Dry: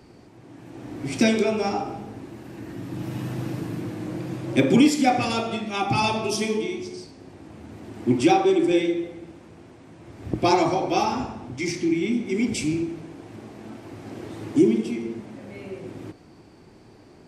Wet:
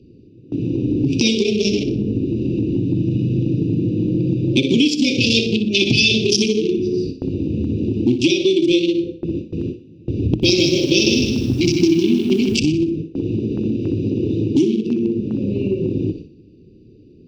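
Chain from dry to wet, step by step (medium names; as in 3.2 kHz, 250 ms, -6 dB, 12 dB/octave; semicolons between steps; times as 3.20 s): local Wiener filter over 41 samples; inverse Chebyshev band-stop 710–1800 Hz, stop band 40 dB; treble shelf 6.9 kHz -11 dB; compression 5:1, threshold -44 dBFS, peak gain reduction 26.5 dB; high-order bell 3.8 kHz +13 dB; gate with hold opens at -40 dBFS; thinning echo 61 ms, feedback 42%, high-pass 400 Hz, level -11 dB; loudness maximiser +28.5 dB; 10.27–12.58 s: bit-crushed delay 156 ms, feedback 35%, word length 7-bit, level -4.5 dB; trim -2 dB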